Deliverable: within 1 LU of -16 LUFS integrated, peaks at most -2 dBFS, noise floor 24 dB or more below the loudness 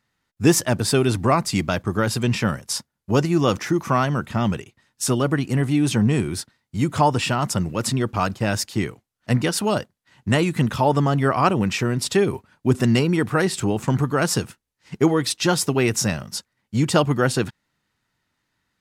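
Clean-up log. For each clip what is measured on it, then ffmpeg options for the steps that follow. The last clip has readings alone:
loudness -21.5 LUFS; peak -4.0 dBFS; loudness target -16.0 LUFS
-> -af "volume=5.5dB,alimiter=limit=-2dB:level=0:latency=1"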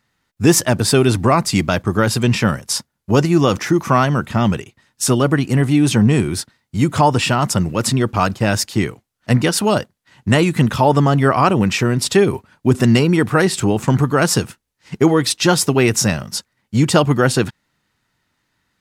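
loudness -16.5 LUFS; peak -2.0 dBFS; noise floor -73 dBFS

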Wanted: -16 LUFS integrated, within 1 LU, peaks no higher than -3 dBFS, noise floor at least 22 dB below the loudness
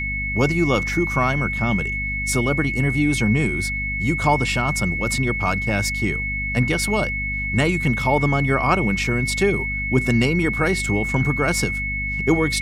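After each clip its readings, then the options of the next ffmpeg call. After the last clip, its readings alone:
hum 50 Hz; harmonics up to 250 Hz; hum level -27 dBFS; steady tone 2200 Hz; tone level -24 dBFS; loudness -20.5 LUFS; peak -4.5 dBFS; loudness target -16.0 LUFS
-> -af "bandreject=f=50:t=h:w=6,bandreject=f=100:t=h:w=6,bandreject=f=150:t=h:w=6,bandreject=f=200:t=h:w=6,bandreject=f=250:t=h:w=6"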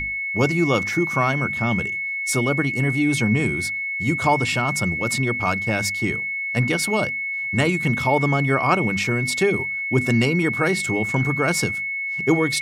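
hum none; steady tone 2200 Hz; tone level -24 dBFS
-> -af "bandreject=f=2.2k:w=30"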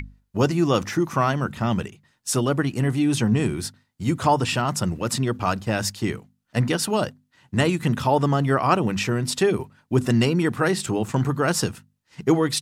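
steady tone none; loudness -23.0 LUFS; peak -5.0 dBFS; loudness target -16.0 LUFS
-> -af "volume=7dB,alimiter=limit=-3dB:level=0:latency=1"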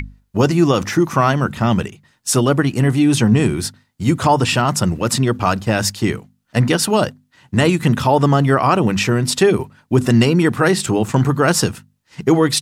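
loudness -16.5 LUFS; peak -3.0 dBFS; noise floor -63 dBFS

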